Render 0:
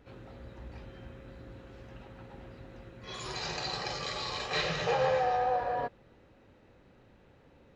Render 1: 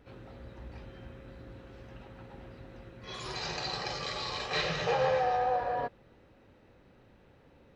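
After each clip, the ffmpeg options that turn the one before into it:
ffmpeg -i in.wav -af "bandreject=frequency=6900:width=13" out.wav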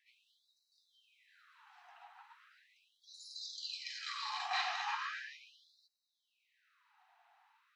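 ffmpeg -i in.wav -af "equalizer=frequency=710:width_type=o:width=1.6:gain=8,afftfilt=real='re*gte(b*sr/1024,650*pow(3800/650,0.5+0.5*sin(2*PI*0.38*pts/sr)))':imag='im*gte(b*sr/1024,650*pow(3800/650,0.5+0.5*sin(2*PI*0.38*pts/sr)))':win_size=1024:overlap=0.75,volume=-5.5dB" out.wav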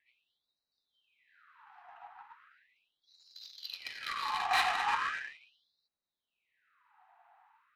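ffmpeg -i in.wav -af "adynamicsmooth=sensitivity=8:basefreq=1600,volume=8dB" out.wav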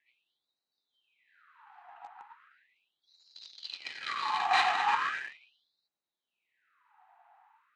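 ffmpeg -i in.wav -filter_complex "[0:a]asplit=2[link_01][link_02];[link_02]acrusher=bits=6:mix=0:aa=0.000001,volume=-11.5dB[link_03];[link_01][link_03]amix=inputs=2:normalize=0,highpass=120,equalizer=frequency=350:width_type=q:width=4:gain=3,equalizer=frequency=830:width_type=q:width=4:gain=3,equalizer=frequency=5400:width_type=q:width=4:gain=-4,lowpass=frequency=7500:width=0.5412,lowpass=frequency=7500:width=1.3066" out.wav

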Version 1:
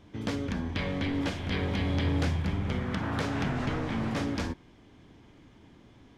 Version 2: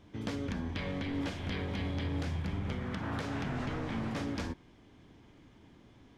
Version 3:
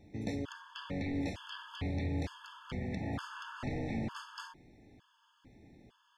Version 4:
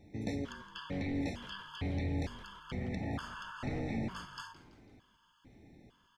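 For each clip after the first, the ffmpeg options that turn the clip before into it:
ffmpeg -i in.wav -af "alimiter=limit=-23.5dB:level=0:latency=1:release=168,volume=-3dB" out.wav
ffmpeg -i in.wav -af "afftfilt=real='re*gt(sin(2*PI*1.1*pts/sr)*(1-2*mod(floor(b*sr/1024/880),2)),0)':imag='im*gt(sin(2*PI*1.1*pts/sr)*(1-2*mod(floor(b*sr/1024/880),2)),0)':win_size=1024:overlap=0.75" out.wav
ffmpeg -i in.wav -filter_complex "[0:a]asplit=4[link_01][link_02][link_03][link_04];[link_02]adelay=166,afreqshift=-42,volume=-16dB[link_05];[link_03]adelay=332,afreqshift=-84,volume=-24.4dB[link_06];[link_04]adelay=498,afreqshift=-126,volume=-32.8dB[link_07];[link_01][link_05][link_06][link_07]amix=inputs=4:normalize=0" out.wav

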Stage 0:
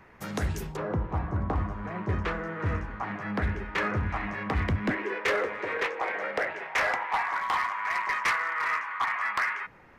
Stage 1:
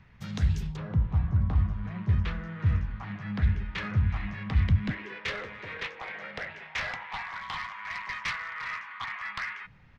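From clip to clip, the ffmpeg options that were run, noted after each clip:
ffmpeg -i in.wav -af "firequalizer=gain_entry='entry(140,0);entry(330,-19);entry(3500,-4);entry(10000,-22)':delay=0.05:min_phase=1,volume=5.5dB" out.wav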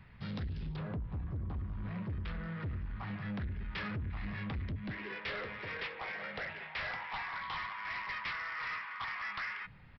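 ffmpeg -i in.wav -af "acompressor=threshold=-30dB:ratio=6,aresample=11025,asoftclip=type=tanh:threshold=-34dB,aresample=44100" out.wav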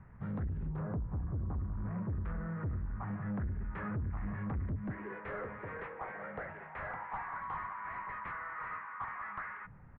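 ffmpeg -i in.wav -af "lowpass=frequency=1500:width=0.5412,lowpass=frequency=1500:width=1.3066,volume=2dB" out.wav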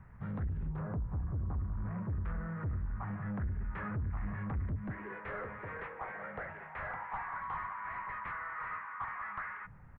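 ffmpeg -i in.wav -af "equalizer=frequency=310:width_type=o:width=2.4:gain=-4.5,volume=2dB" out.wav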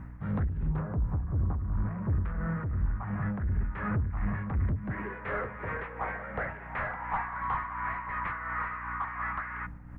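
ffmpeg -i in.wav -af "aeval=exprs='val(0)+0.00316*(sin(2*PI*60*n/s)+sin(2*PI*2*60*n/s)/2+sin(2*PI*3*60*n/s)/3+sin(2*PI*4*60*n/s)/4+sin(2*PI*5*60*n/s)/5)':channel_layout=same,tremolo=f=2.8:d=0.52,volume=8.5dB" out.wav

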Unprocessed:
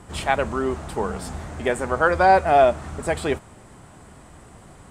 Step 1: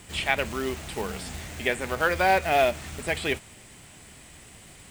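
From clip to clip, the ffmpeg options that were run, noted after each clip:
ffmpeg -i in.wav -filter_complex "[0:a]acrusher=bits=5:mode=log:mix=0:aa=0.000001,acrossover=split=3200[link_01][link_02];[link_02]acompressor=threshold=-43dB:ratio=4:attack=1:release=60[link_03];[link_01][link_03]amix=inputs=2:normalize=0,highshelf=frequency=1700:width_type=q:width=1.5:gain=10.5,volume=-5.5dB" out.wav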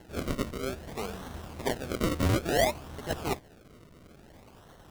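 ffmpeg -i in.wav -af "acrusher=samples=36:mix=1:aa=0.000001:lfo=1:lforange=36:lforate=0.58,volume=-4.5dB" out.wav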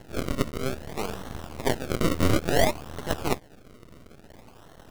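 ffmpeg -i in.wav -af "aeval=exprs='max(val(0),0)':channel_layout=same,volume=7.5dB" out.wav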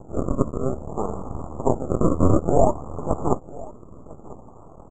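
ffmpeg -i in.wav -af "asuperstop=centerf=3100:order=20:qfactor=0.52,aecho=1:1:999:0.1,aresample=16000,aresample=44100,volume=5.5dB" out.wav

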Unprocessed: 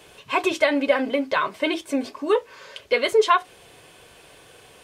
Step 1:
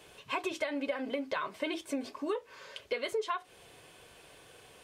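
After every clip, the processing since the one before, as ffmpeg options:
ffmpeg -i in.wav -af "acompressor=threshold=-24dB:ratio=6,volume=-6.5dB" out.wav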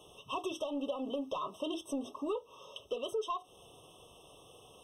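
ffmpeg -i in.wav -af "asoftclip=type=tanh:threshold=-27dB,afftfilt=real='re*eq(mod(floor(b*sr/1024/1300),2),0)':imag='im*eq(mod(floor(b*sr/1024/1300),2),0)':win_size=1024:overlap=0.75" out.wav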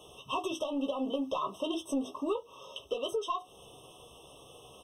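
ffmpeg -i in.wav -filter_complex "[0:a]asplit=2[link_01][link_02];[link_02]adelay=15,volume=-6.5dB[link_03];[link_01][link_03]amix=inputs=2:normalize=0,volume=3dB" out.wav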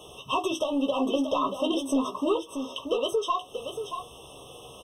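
ffmpeg -i in.wav -af "aecho=1:1:632:0.398,volume=6.5dB" out.wav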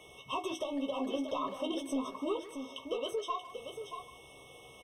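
ffmpeg -i in.wav -filter_complex "[0:a]asplit=2[link_01][link_02];[link_02]adelay=150,highpass=300,lowpass=3400,asoftclip=type=hard:threshold=-23.5dB,volume=-13dB[link_03];[link_01][link_03]amix=inputs=2:normalize=0,aeval=exprs='val(0)+0.00355*sin(2*PI*2200*n/s)':channel_layout=same,volume=-9dB" out.wav

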